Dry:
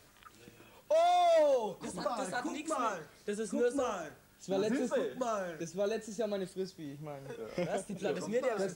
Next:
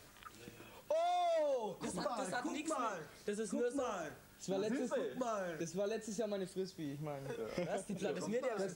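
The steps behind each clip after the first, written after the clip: compressor 2.5:1, threshold -40 dBFS, peak gain reduction 10.5 dB; gain +1.5 dB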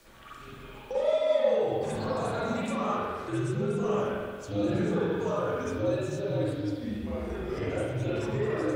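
spring tank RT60 1.6 s, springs 44/54 ms, chirp 25 ms, DRR -9.5 dB; frequency shift -76 Hz

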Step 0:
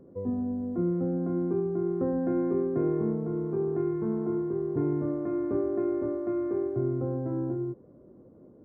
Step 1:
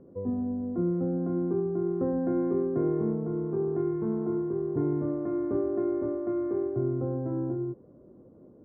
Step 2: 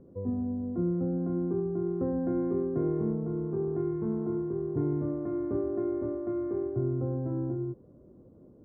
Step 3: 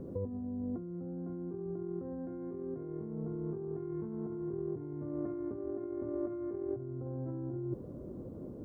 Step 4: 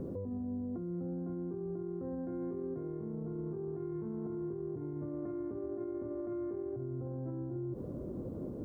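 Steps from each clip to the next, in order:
LPF 1900 Hz 12 dB/oct
low shelf 120 Hz +10.5 dB; gain -3.5 dB
negative-ratio compressor -40 dBFS, ratio -1; gain +1 dB
limiter -36 dBFS, peak gain reduction 10.5 dB; gain +4 dB

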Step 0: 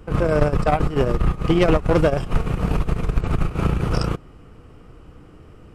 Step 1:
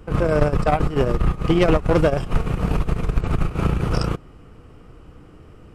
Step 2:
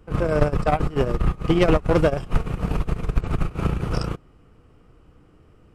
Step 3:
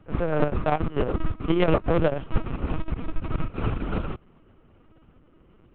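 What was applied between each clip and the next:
nothing audible
upward expander 1.5:1, over -29 dBFS
LPC vocoder at 8 kHz pitch kept; gain -3 dB

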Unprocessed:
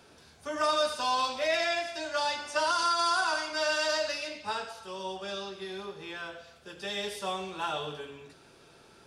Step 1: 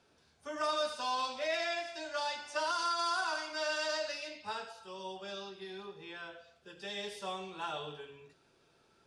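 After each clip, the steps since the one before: spectral noise reduction 6 dB; LPF 9100 Hz 12 dB/oct; gain -6 dB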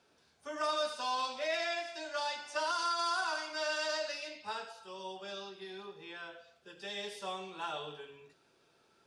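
low shelf 120 Hz -9.5 dB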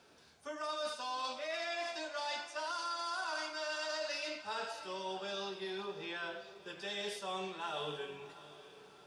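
reverse; compressor 6:1, threshold -43 dBFS, peak gain reduction 13 dB; reverse; diffused feedback echo 0.687 s, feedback 40%, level -15 dB; gain +6 dB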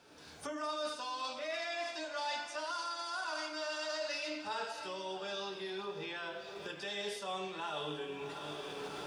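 recorder AGC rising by 33 dB/s; on a send at -11 dB: reverb RT60 0.40 s, pre-delay 3 ms

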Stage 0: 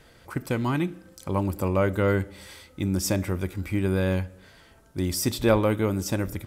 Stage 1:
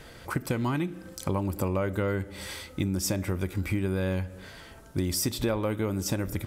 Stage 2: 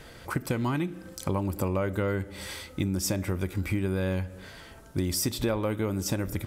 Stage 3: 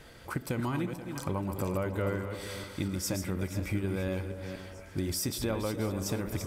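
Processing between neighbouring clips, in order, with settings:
compressor 6:1, threshold -32 dBFS, peak gain reduction 16 dB; gain +6.5 dB
nothing audible
regenerating reverse delay 0.24 s, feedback 48%, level -7 dB; delay with a stepping band-pass 0.286 s, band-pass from 580 Hz, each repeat 0.7 oct, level -9 dB; gain -4.5 dB

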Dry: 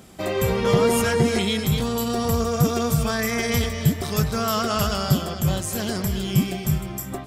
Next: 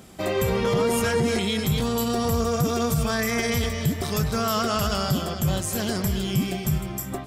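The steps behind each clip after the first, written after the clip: limiter -14 dBFS, peak gain reduction 6.5 dB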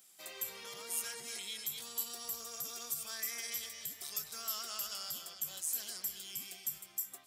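differentiator; gain -7 dB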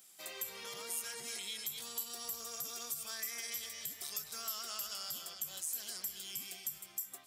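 compressor 2:1, threshold -41 dBFS, peak gain reduction 5.5 dB; gain +2 dB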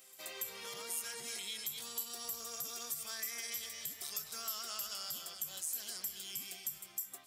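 pre-echo 0.285 s -20.5 dB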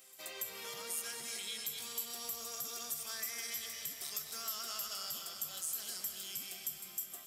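digital reverb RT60 4.1 s, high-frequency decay 0.95×, pre-delay 95 ms, DRR 7.5 dB

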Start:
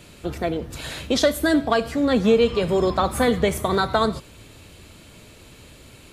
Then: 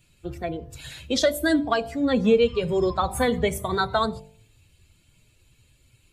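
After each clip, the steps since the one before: per-bin expansion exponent 1.5; de-hum 49.04 Hz, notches 21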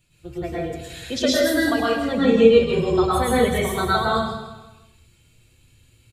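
on a send: feedback echo 0.16 s, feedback 40%, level -11 dB; on the sum: plate-style reverb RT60 0.61 s, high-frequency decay 1×, pre-delay 95 ms, DRR -6.5 dB; gain -4 dB

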